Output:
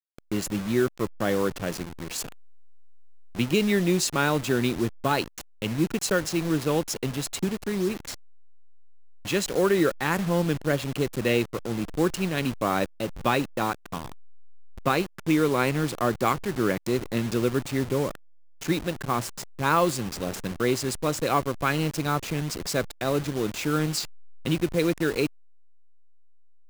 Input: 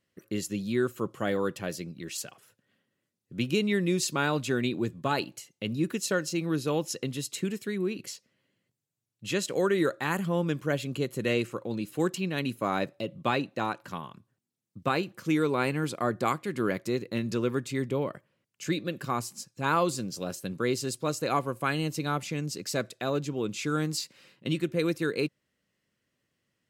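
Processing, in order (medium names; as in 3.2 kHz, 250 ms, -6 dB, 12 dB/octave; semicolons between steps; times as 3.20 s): send-on-delta sampling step -34.5 dBFS; trim +4 dB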